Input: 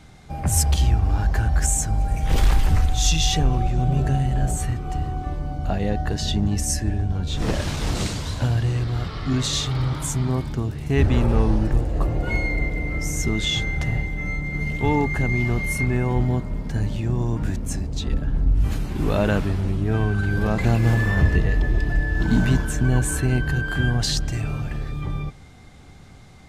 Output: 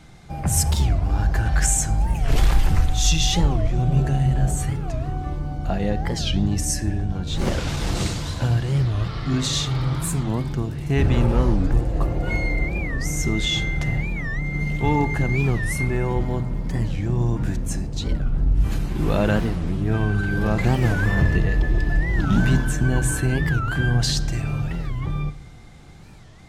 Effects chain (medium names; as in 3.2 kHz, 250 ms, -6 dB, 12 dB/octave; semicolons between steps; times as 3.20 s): 1.45–2.05 s: peaking EQ 2.7 kHz +8.5 dB -> +1 dB 2.6 oct; simulated room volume 3200 m³, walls furnished, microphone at 0.78 m; warped record 45 rpm, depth 250 cents